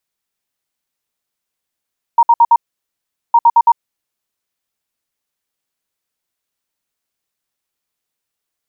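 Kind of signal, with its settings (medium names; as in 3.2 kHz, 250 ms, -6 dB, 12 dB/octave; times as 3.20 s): beep pattern sine 936 Hz, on 0.05 s, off 0.06 s, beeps 4, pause 0.78 s, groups 2, -4.5 dBFS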